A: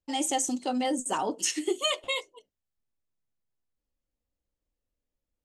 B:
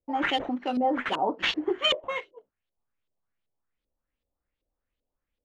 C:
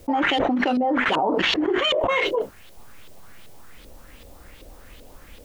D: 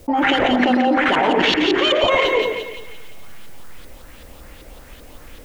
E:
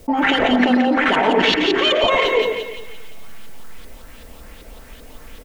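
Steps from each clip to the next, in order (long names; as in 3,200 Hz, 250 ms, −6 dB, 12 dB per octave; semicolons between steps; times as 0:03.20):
sample-rate reduction 9,900 Hz, jitter 0%; auto-filter low-pass saw up 2.6 Hz 470–3,900 Hz
envelope flattener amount 100%
echo with a time of its own for lows and highs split 2,000 Hz, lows 105 ms, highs 173 ms, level −4 dB; level +3 dB
comb filter 4.5 ms, depth 33%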